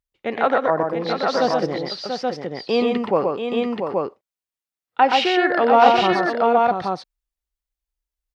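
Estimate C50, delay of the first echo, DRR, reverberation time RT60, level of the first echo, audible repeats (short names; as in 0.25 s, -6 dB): none, 93 ms, none, none, -17.0 dB, 4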